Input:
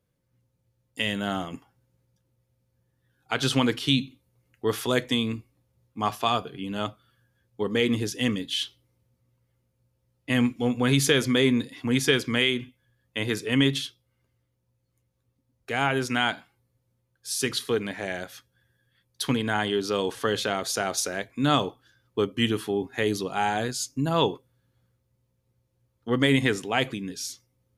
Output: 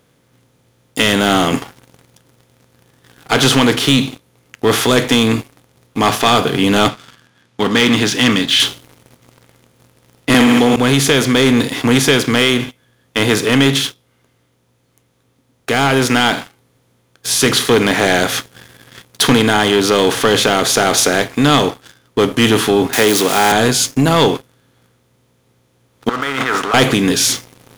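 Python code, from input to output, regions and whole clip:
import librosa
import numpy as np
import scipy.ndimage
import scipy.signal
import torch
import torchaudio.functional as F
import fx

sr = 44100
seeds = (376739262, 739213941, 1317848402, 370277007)

y = fx.chain(x, sr, fx.bandpass_edges(low_hz=190.0, high_hz=4400.0),
    fx.peak_eq(hz=470.0, db=-13.0, octaves=1.5), at=(6.88, 8.6))
y = fx.chain(y, sr, fx.highpass(hz=210.0, slope=12),
    fx.room_flutter(wall_m=10.7, rt60_s=0.48),
    fx.env_flatten(amount_pct=100), at=(10.34, 10.76))
y = fx.chain(y, sr, fx.crossing_spikes(level_db=-26.0),
    fx.highpass(hz=260.0, slope=12), at=(22.93, 23.52))
y = fx.chain(y, sr, fx.over_compress(threshold_db=-31.0, ratio=-1.0),
    fx.leveller(passes=2),
    fx.bandpass_q(hz=1300.0, q=11.0), at=(26.09, 26.74))
y = fx.bin_compress(y, sr, power=0.6)
y = fx.rider(y, sr, range_db=10, speed_s=0.5)
y = fx.leveller(y, sr, passes=3)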